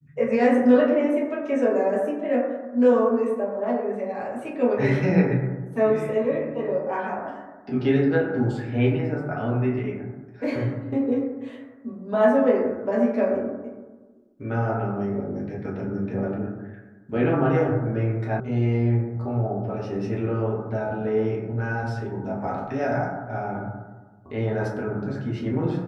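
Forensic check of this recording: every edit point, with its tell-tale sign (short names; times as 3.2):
18.4 sound cut off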